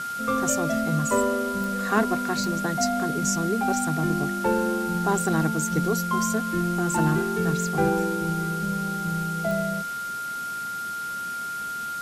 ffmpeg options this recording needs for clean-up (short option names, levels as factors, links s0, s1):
-af "adeclick=t=4,bandreject=f=1400:w=30,afwtdn=0.0089"